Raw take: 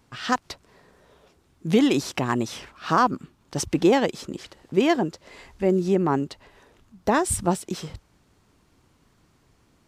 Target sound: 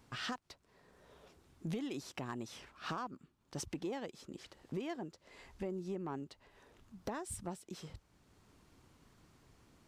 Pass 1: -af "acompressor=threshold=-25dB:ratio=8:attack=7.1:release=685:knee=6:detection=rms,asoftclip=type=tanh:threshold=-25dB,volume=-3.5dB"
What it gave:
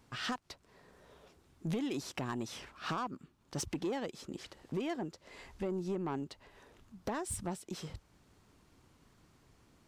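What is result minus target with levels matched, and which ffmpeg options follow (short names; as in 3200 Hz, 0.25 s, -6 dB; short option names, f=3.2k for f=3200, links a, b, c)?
compressor: peak gain reduction -5.5 dB
-af "acompressor=threshold=-31.5dB:ratio=8:attack=7.1:release=685:knee=6:detection=rms,asoftclip=type=tanh:threshold=-25dB,volume=-3.5dB"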